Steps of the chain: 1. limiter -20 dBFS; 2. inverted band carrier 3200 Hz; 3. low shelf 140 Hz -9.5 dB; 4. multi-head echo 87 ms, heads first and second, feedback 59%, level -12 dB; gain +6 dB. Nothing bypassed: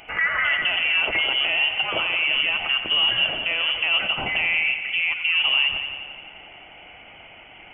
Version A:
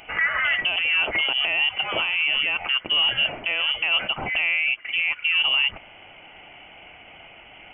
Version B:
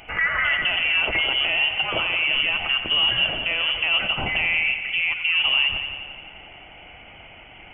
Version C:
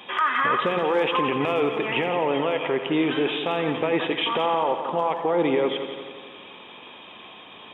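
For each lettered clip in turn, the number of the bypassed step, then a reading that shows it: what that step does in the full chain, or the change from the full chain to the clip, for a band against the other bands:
4, echo-to-direct -6.0 dB to none; 3, 125 Hz band +5.0 dB; 2, 2 kHz band -20.5 dB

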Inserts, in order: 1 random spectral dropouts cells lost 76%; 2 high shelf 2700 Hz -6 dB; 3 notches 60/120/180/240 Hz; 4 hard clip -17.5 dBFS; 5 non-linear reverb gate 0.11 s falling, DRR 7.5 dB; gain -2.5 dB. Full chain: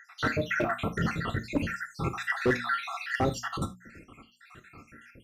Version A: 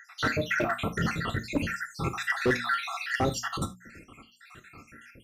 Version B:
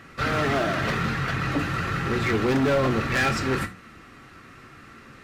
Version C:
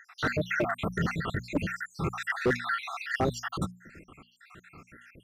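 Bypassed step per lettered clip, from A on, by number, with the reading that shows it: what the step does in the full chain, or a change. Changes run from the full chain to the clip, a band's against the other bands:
2, 8 kHz band +4.5 dB; 1, 2 kHz band -2.5 dB; 5, crest factor change -4.0 dB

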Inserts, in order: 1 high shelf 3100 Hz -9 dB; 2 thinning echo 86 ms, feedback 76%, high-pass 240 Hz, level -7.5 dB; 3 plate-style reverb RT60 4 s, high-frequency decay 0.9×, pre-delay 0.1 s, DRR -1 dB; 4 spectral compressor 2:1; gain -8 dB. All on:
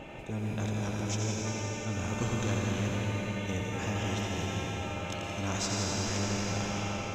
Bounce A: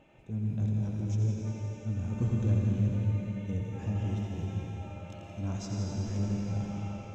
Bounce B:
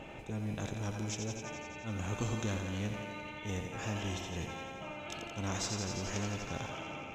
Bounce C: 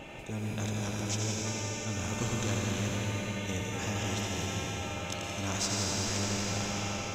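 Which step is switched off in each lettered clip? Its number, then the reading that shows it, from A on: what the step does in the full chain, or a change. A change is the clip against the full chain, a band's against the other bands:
4, 125 Hz band +13.0 dB; 3, momentary loudness spread change +3 LU; 1, 8 kHz band +4.5 dB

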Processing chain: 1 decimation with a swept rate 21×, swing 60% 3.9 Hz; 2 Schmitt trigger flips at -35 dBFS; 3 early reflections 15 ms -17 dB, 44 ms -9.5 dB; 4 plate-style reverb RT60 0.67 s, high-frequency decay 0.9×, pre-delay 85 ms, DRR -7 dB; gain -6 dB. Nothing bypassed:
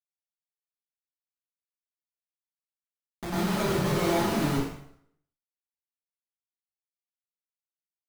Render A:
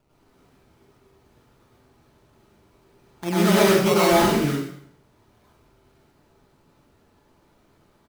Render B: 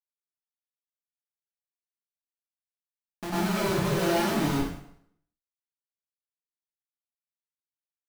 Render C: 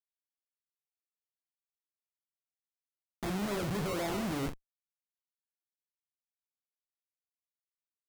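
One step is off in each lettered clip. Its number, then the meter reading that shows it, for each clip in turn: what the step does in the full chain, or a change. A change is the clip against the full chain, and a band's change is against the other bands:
2, distortion -1 dB; 1, distortion -1 dB; 4, momentary loudness spread change -4 LU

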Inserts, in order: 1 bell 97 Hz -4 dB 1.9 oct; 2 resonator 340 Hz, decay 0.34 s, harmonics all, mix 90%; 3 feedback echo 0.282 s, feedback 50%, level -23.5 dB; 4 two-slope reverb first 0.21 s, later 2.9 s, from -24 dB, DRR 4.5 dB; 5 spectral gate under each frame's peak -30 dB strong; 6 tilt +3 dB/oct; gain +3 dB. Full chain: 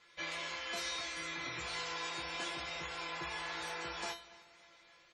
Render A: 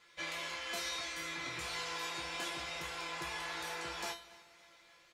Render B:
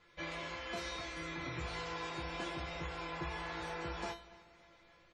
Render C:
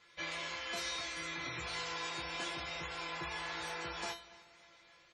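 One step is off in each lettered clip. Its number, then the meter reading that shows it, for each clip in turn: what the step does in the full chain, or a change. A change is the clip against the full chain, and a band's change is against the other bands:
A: 5, 8 kHz band +2.0 dB; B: 6, 125 Hz band +10.5 dB; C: 1, 125 Hz band +3.0 dB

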